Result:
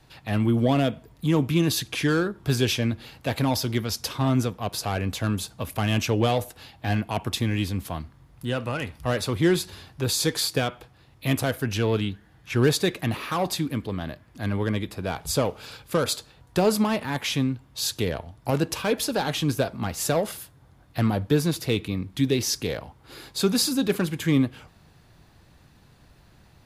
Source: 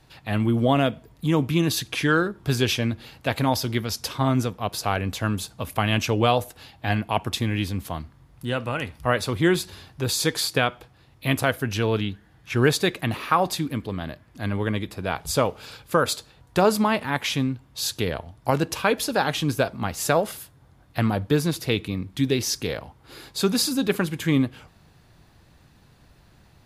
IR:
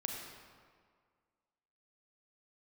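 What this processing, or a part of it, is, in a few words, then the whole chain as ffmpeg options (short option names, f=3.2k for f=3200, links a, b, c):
one-band saturation: -filter_complex "[0:a]acrossover=split=560|3500[a][b][c];[b]asoftclip=type=tanh:threshold=-26.5dB[d];[a][d][c]amix=inputs=3:normalize=0"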